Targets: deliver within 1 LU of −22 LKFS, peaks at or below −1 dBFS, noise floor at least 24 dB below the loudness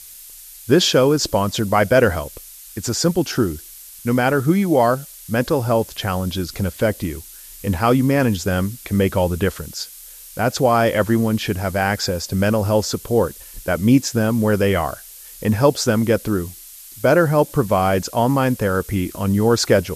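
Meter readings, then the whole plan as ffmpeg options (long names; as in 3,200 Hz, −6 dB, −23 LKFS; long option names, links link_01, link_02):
background noise floor −40 dBFS; target noise floor −43 dBFS; integrated loudness −19.0 LKFS; sample peak −2.0 dBFS; target loudness −22.0 LKFS
→ -af "afftdn=noise_reduction=6:noise_floor=-40"
-af "volume=-3dB"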